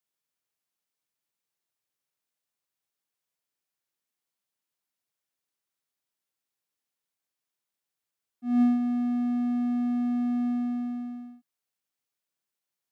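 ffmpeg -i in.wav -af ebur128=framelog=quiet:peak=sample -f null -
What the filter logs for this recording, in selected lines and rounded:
Integrated loudness:
  I:         -27.3 LUFS
  Threshold: -38.0 LUFS
Loudness range:
  LRA:         5.1 LU
  Threshold: -49.5 LUFS
  LRA low:   -32.6 LUFS
  LRA high:  -27.5 LUFS
Sample peak:
  Peak:      -16.0 dBFS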